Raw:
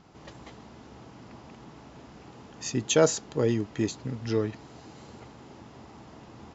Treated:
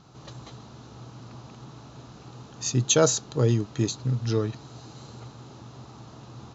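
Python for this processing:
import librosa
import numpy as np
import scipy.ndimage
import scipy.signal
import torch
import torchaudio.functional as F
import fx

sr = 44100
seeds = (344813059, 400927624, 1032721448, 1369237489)

y = fx.graphic_eq_31(x, sr, hz=(125, 1250, 2000, 4000, 6300), db=(12, 5, -6, 9, 7))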